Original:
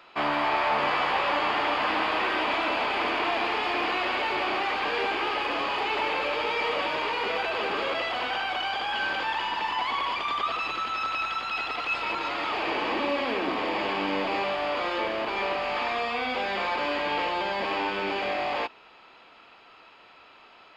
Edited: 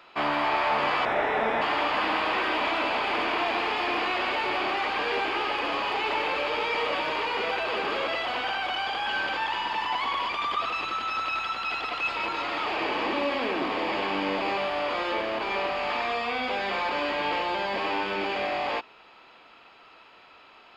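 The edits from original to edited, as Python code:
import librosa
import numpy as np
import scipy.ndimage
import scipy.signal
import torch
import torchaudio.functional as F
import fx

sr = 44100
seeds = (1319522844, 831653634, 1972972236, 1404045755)

y = fx.edit(x, sr, fx.speed_span(start_s=1.05, length_s=0.43, speed=0.76), tone=tone)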